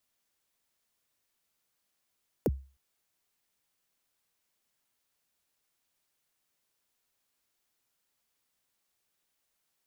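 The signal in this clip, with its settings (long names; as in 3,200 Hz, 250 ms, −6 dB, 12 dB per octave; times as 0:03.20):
synth kick length 0.31 s, from 580 Hz, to 67 Hz, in 37 ms, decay 0.35 s, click on, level −20 dB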